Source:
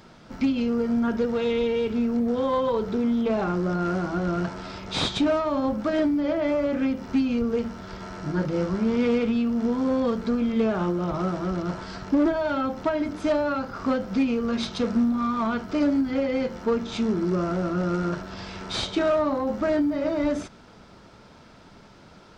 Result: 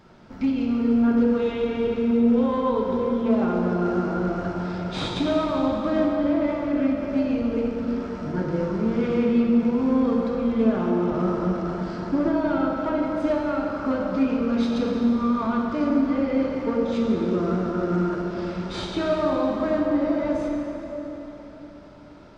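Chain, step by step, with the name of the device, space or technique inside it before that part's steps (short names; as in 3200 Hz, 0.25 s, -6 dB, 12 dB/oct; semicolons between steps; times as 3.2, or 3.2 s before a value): swimming-pool hall (reverb RT60 4.0 s, pre-delay 9 ms, DRR -1 dB; high shelf 3000 Hz -8 dB); gain -2.5 dB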